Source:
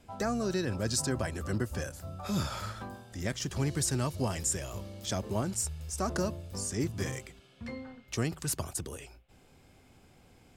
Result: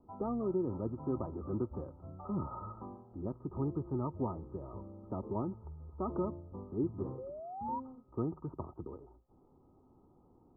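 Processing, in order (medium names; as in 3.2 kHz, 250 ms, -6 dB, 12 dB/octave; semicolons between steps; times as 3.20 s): painted sound rise, 7.18–7.80 s, 500–1000 Hz -37 dBFS; rippled Chebyshev low-pass 1.3 kHz, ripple 9 dB; trim +1 dB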